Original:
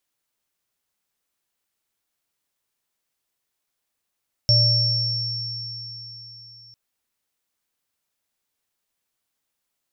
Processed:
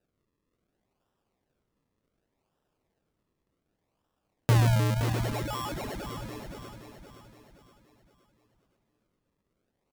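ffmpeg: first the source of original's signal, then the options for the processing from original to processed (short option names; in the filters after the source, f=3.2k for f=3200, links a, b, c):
-f lavfi -i "aevalsrc='0.158*pow(10,-3*t/3.38)*sin(2*PI*116*t)+0.0398*pow(10,-3*t/1.5)*sin(2*PI*591*t)+0.188*pow(10,-3*t/4.31)*sin(2*PI*5450*t)':d=2.25:s=44100"
-filter_complex "[0:a]acrossover=split=1100[a][b];[b]acompressor=threshold=-34dB:ratio=4[c];[a][c]amix=inputs=2:normalize=0,acrusher=samples=40:mix=1:aa=0.000001:lfo=1:lforange=40:lforate=0.67,aecho=1:1:520|1040|1560|2080|2600:0.376|0.165|0.0728|0.032|0.0141"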